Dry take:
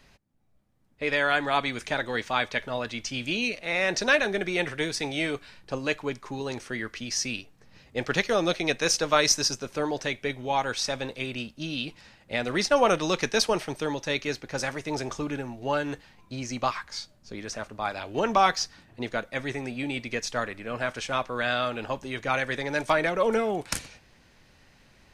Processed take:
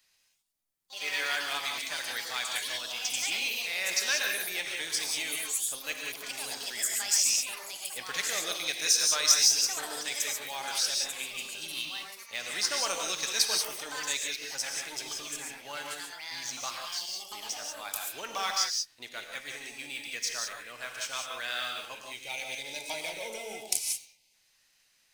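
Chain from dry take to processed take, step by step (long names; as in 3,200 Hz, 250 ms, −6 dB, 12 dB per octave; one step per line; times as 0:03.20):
gain on a spectral selection 0:22.14–0:24.34, 980–2,000 Hz −18 dB
leveller curve on the samples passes 1
first-order pre-emphasis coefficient 0.97
reverb whose tail is shaped and stops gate 210 ms rising, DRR 1 dB
delay with pitch and tempo change per echo 165 ms, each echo +5 semitones, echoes 3, each echo −6 dB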